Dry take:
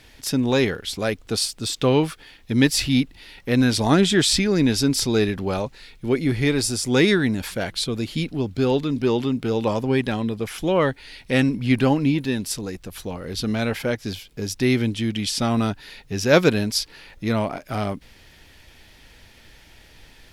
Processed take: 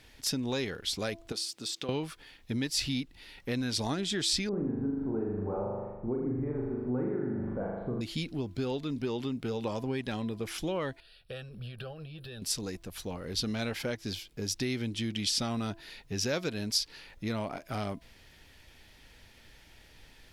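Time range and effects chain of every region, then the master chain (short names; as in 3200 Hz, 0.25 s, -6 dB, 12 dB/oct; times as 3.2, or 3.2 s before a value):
1.32–1.89 HPF 200 Hz + compressor 4:1, threshold -30 dBFS
4.49–8.01 inverse Chebyshev low-pass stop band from 6300 Hz, stop band 80 dB + flutter echo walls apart 6.9 m, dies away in 1.1 s
11–12.42 gate -35 dBFS, range -7 dB + compressor 16:1, threshold -25 dBFS + fixed phaser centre 1400 Hz, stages 8
whole clip: compressor 5:1, threshold -23 dBFS; de-hum 334.1 Hz, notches 3; dynamic EQ 5000 Hz, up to +6 dB, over -43 dBFS, Q 0.87; gain -7 dB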